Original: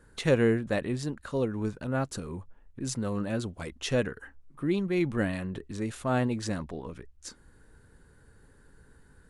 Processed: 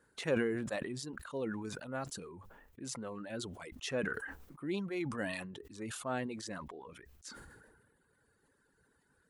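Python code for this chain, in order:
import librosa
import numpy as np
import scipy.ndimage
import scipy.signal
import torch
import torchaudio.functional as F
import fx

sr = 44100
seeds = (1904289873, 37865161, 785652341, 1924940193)

y = fx.highpass(x, sr, hz=290.0, slope=6)
y = fx.dereverb_blind(y, sr, rt60_s=1.3)
y = fx.sustainer(y, sr, db_per_s=39.0)
y = y * 10.0 ** (-7.0 / 20.0)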